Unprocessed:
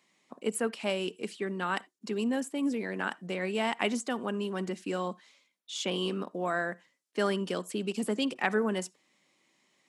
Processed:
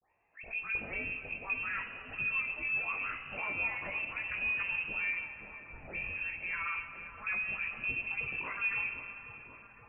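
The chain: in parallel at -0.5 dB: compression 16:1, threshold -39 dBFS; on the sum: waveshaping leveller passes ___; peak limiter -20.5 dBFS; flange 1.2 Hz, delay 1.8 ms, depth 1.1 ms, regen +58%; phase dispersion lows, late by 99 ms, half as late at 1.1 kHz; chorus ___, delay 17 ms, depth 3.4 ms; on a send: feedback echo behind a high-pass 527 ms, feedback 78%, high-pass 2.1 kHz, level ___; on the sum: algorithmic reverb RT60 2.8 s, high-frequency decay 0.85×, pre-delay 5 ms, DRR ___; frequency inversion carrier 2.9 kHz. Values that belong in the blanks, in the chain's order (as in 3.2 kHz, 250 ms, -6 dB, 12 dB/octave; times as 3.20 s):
1, 0.43 Hz, -8 dB, 7.5 dB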